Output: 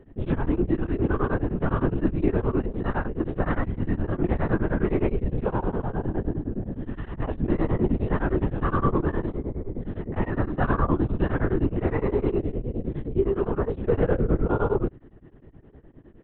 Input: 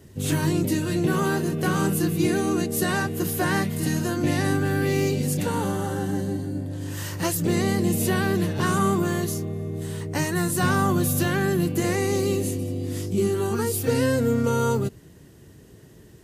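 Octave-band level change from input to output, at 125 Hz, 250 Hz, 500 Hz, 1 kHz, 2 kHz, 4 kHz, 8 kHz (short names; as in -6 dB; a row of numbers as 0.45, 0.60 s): -2.0 dB, -2.5 dB, -1.5 dB, -3.0 dB, -7.0 dB, under -15 dB, under -40 dB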